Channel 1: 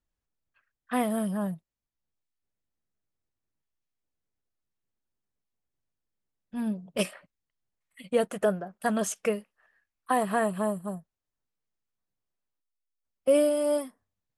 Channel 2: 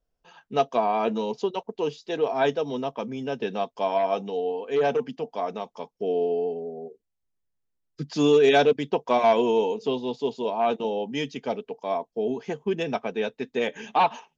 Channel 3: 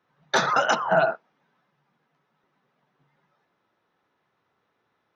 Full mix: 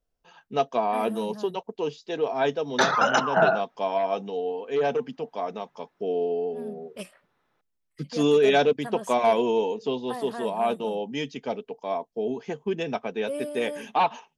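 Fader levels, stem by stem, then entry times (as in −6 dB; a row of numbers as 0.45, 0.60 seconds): −10.5, −1.5, 0.0 decibels; 0.00, 0.00, 2.45 seconds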